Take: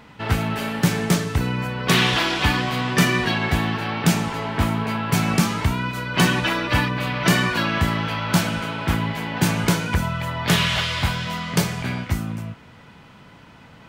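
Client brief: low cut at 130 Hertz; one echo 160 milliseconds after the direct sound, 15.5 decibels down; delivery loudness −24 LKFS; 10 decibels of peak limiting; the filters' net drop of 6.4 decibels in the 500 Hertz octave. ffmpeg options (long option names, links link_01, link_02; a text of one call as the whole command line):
ffmpeg -i in.wav -af "highpass=130,equalizer=frequency=500:width_type=o:gain=-9,alimiter=limit=-14.5dB:level=0:latency=1,aecho=1:1:160:0.168,volume=1dB" out.wav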